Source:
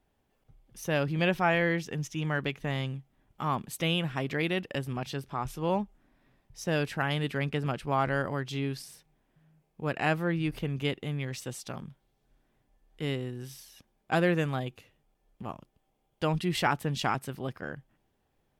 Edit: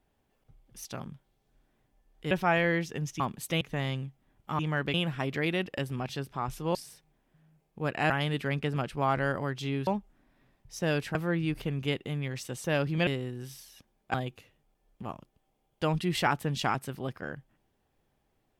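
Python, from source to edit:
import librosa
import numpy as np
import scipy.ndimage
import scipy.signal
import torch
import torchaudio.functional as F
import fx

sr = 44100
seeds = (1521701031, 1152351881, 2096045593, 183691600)

y = fx.edit(x, sr, fx.swap(start_s=0.85, length_s=0.43, other_s=11.61, other_length_s=1.46),
    fx.swap(start_s=2.17, length_s=0.35, other_s=3.5, other_length_s=0.41),
    fx.swap(start_s=5.72, length_s=1.28, other_s=8.77, other_length_s=1.35),
    fx.cut(start_s=14.14, length_s=0.4), tone=tone)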